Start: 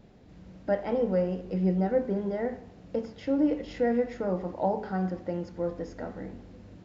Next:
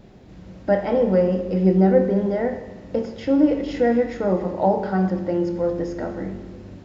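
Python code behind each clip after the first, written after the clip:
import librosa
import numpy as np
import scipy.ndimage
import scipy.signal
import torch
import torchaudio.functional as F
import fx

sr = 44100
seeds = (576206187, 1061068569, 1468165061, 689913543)

y = fx.rev_fdn(x, sr, rt60_s=1.4, lf_ratio=1.45, hf_ratio=0.95, size_ms=16.0, drr_db=8.0)
y = y * 10.0 ** (7.5 / 20.0)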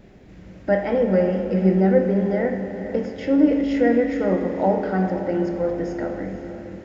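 y = fx.graphic_eq(x, sr, hz=(125, 1000, 2000, 4000), db=(-3, -4, 5, -4))
y = fx.echo_diffused(y, sr, ms=485, feedback_pct=43, wet_db=-12)
y = fx.rev_spring(y, sr, rt60_s=3.9, pass_ms=(36,), chirp_ms=30, drr_db=9.5)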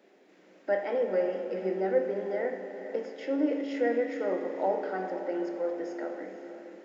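y = scipy.signal.sosfilt(scipy.signal.butter(4, 310.0, 'highpass', fs=sr, output='sos'), x)
y = y * 10.0 ** (-7.5 / 20.0)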